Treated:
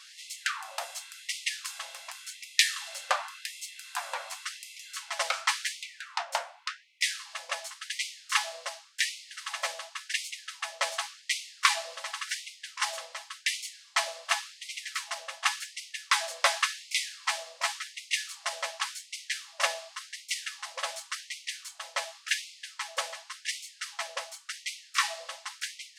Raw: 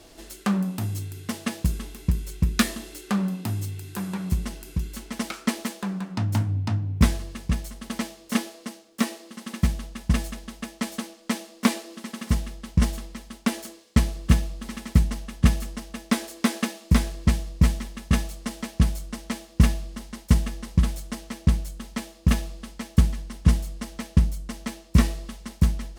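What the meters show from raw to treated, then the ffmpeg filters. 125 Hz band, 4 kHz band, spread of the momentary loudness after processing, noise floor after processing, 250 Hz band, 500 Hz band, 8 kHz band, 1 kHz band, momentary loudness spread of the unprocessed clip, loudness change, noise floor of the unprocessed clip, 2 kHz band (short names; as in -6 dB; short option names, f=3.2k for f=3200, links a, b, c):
under -40 dB, +5.0 dB, 11 LU, -56 dBFS, under -40 dB, -4.5 dB, +2.5 dB, +2.5 dB, 13 LU, -6.0 dB, -50 dBFS, +4.5 dB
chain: -af "highpass=150,lowpass=7.7k,afftfilt=real='re*gte(b*sr/1024,480*pow(2000/480,0.5+0.5*sin(2*PI*0.9*pts/sr)))':imag='im*gte(b*sr/1024,480*pow(2000/480,0.5+0.5*sin(2*PI*0.9*pts/sr)))':win_size=1024:overlap=0.75,volume=5.5dB"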